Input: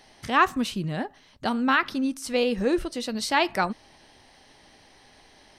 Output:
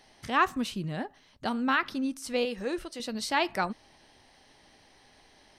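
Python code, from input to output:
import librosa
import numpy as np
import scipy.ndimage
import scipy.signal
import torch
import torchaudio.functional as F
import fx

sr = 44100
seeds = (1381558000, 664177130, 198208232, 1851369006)

y = fx.low_shelf(x, sr, hz=410.0, db=-8.5, at=(2.45, 3.0))
y = F.gain(torch.from_numpy(y), -4.5).numpy()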